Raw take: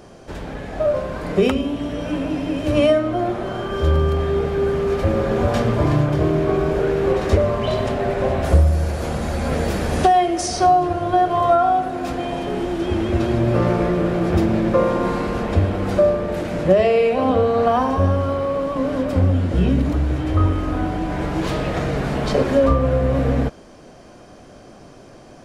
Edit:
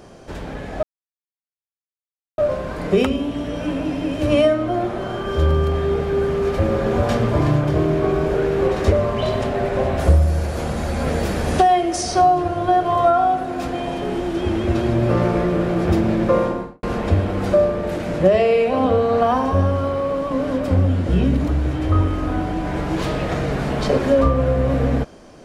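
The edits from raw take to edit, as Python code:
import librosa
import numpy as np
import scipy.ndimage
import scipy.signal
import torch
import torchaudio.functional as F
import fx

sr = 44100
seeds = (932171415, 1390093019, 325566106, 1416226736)

y = fx.studio_fade_out(x, sr, start_s=14.82, length_s=0.46)
y = fx.edit(y, sr, fx.insert_silence(at_s=0.83, length_s=1.55), tone=tone)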